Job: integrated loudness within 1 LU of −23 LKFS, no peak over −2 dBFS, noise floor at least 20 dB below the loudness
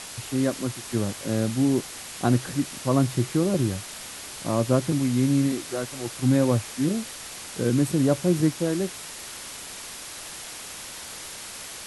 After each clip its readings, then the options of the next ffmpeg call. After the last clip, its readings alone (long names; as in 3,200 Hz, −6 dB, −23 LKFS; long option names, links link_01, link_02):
background noise floor −39 dBFS; target noise floor −46 dBFS; integrated loudness −26.0 LKFS; sample peak −8.0 dBFS; target loudness −23.0 LKFS
→ -af "afftdn=noise_reduction=7:noise_floor=-39"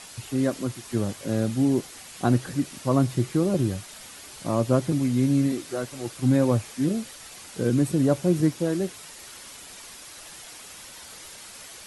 background noise floor −44 dBFS; target noise floor −45 dBFS
→ -af "afftdn=noise_reduction=6:noise_floor=-44"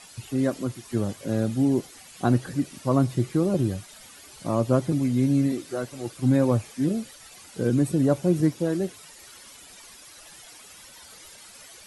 background noise floor −48 dBFS; integrated loudness −25.0 LKFS; sample peak −8.5 dBFS; target loudness −23.0 LKFS
→ -af "volume=2dB"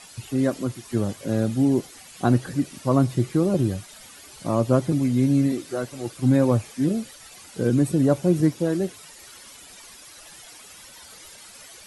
integrated loudness −23.0 LKFS; sample peak −6.5 dBFS; background noise floor −46 dBFS